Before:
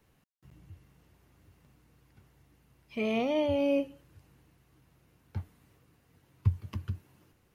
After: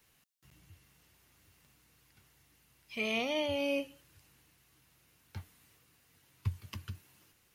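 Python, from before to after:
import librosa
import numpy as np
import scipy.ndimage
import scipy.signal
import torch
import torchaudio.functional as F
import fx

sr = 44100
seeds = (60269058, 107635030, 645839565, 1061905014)

y = fx.tilt_shelf(x, sr, db=-8.0, hz=1400.0)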